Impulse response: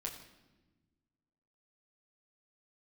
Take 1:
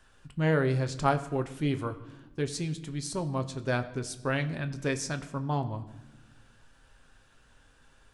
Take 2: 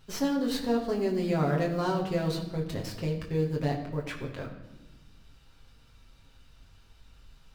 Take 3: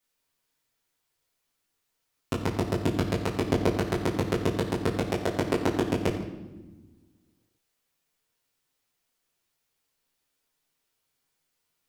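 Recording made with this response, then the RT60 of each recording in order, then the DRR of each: 2; not exponential, 1.1 s, 1.1 s; 7.0, -2.0, -7.5 dB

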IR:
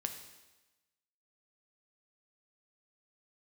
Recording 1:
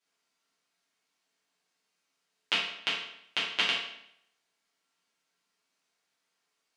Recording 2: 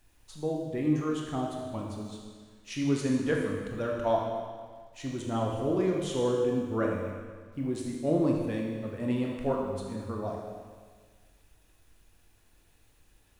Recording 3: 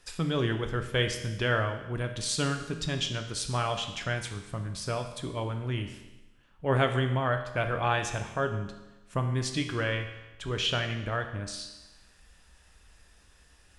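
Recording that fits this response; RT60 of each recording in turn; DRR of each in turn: 3; 0.70, 1.6, 1.1 s; -9.5, -1.0, 5.0 dB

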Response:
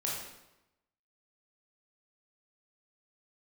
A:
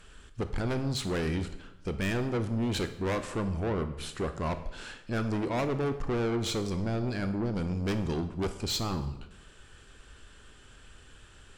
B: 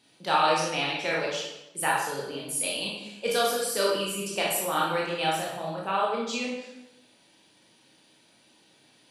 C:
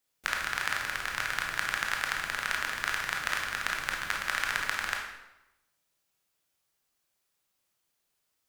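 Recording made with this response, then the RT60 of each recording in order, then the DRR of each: B; 0.90, 0.95, 0.95 s; 9.0, -4.0, 0.0 dB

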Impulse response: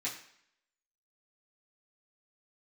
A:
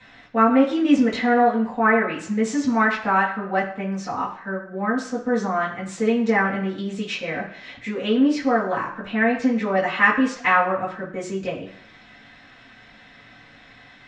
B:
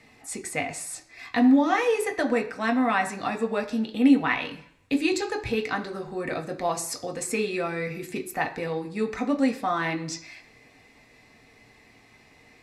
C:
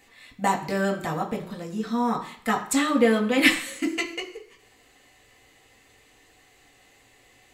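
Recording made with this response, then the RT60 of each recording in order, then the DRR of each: A; 0.65, 0.65, 0.65 s; -8.5, 3.5, -1.0 dB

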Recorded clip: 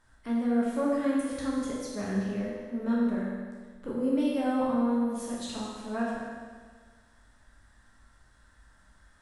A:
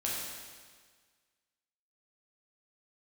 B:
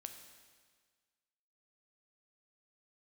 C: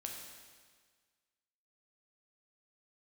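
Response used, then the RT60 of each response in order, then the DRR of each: A; 1.6, 1.6, 1.6 s; -5.5, 5.5, 0.0 dB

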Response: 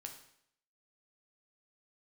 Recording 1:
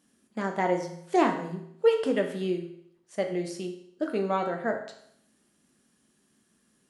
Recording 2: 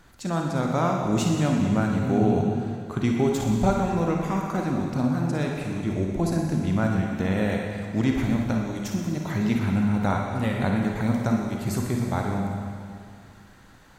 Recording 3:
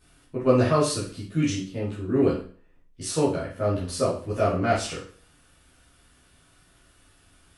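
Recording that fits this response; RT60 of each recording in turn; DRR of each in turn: 1; 0.70, 2.2, 0.45 s; 3.0, 0.0, -9.5 dB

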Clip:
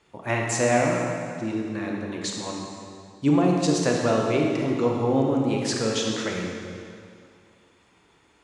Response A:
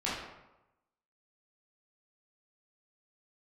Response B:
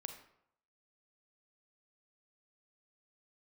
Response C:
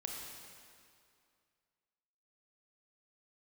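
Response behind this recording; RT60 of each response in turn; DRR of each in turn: C; 0.95, 0.75, 2.3 s; -9.0, 6.0, -0.5 dB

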